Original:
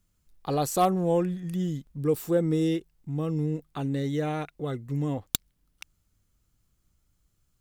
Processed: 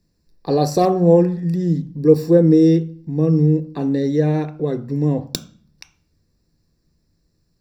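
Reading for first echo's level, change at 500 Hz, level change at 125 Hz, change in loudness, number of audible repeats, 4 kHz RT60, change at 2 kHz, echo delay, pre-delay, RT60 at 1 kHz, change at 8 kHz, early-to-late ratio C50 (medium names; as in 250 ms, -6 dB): no echo, +11.5 dB, +11.5 dB, +11.5 dB, no echo, 0.40 s, +3.5 dB, no echo, 3 ms, 0.40 s, no reading, 15.5 dB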